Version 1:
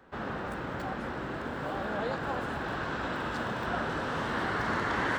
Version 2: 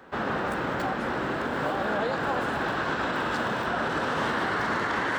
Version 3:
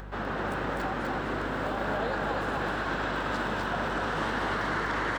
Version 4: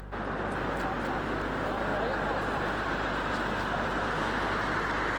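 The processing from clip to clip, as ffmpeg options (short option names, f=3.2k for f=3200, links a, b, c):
-af "lowshelf=f=110:g=-11,alimiter=level_in=3dB:limit=-24dB:level=0:latency=1:release=83,volume=-3dB,volume=8.5dB"
-af "acompressor=mode=upward:threshold=-36dB:ratio=2.5,aecho=1:1:251:0.708,aeval=exprs='val(0)+0.0158*(sin(2*PI*50*n/s)+sin(2*PI*2*50*n/s)/2+sin(2*PI*3*50*n/s)/3+sin(2*PI*4*50*n/s)/4+sin(2*PI*5*50*n/s)/5)':c=same,volume=-4.5dB"
-ar 48000 -c:a libopus -b:a 24k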